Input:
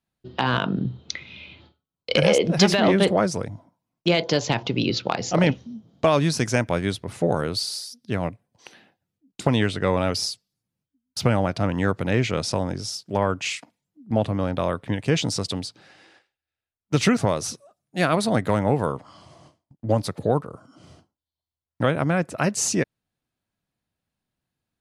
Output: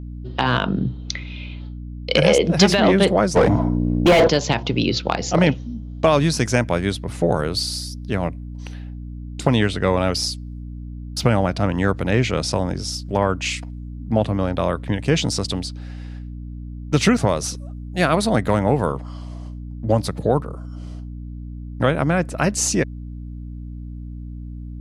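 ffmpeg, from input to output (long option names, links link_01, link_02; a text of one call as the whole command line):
ffmpeg -i in.wav -filter_complex "[0:a]aeval=exprs='val(0)+0.02*(sin(2*PI*60*n/s)+sin(2*PI*2*60*n/s)/2+sin(2*PI*3*60*n/s)/3+sin(2*PI*4*60*n/s)/4+sin(2*PI*5*60*n/s)/5)':channel_layout=same,asplit=3[link_01][link_02][link_03];[link_01]afade=type=out:start_time=3.35:duration=0.02[link_04];[link_02]asplit=2[link_05][link_06];[link_06]highpass=frequency=720:poles=1,volume=37dB,asoftclip=type=tanh:threshold=-6.5dB[link_07];[link_05][link_07]amix=inputs=2:normalize=0,lowpass=frequency=1000:poles=1,volume=-6dB,afade=type=in:start_time=3.35:duration=0.02,afade=type=out:start_time=4.27:duration=0.02[link_08];[link_03]afade=type=in:start_time=4.27:duration=0.02[link_09];[link_04][link_08][link_09]amix=inputs=3:normalize=0,volume=3dB" out.wav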